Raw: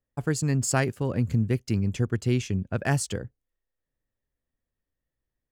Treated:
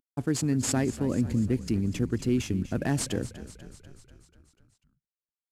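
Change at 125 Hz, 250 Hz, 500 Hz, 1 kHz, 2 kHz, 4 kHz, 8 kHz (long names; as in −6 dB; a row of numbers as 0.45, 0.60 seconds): −4.0, +2.0, −2.0, −5.5, −6.0, 0.0, −1.5 decibels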